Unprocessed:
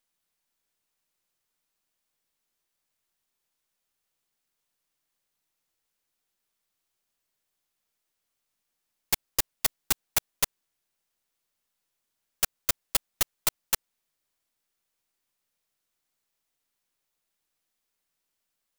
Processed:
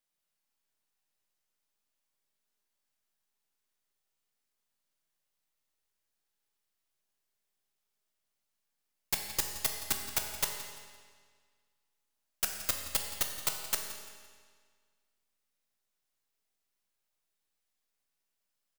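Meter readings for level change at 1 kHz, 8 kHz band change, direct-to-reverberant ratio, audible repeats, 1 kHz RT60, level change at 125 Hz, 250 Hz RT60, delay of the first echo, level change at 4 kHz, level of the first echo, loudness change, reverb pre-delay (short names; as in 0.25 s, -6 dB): -4.0 dB, -4.5 dB, 2.5 dB, 1, 1.7 s, -4.0 dB, 1.7 s, 0.171 s, -4.0 dB, -15.5 dB, -5.0 dB, 5 ms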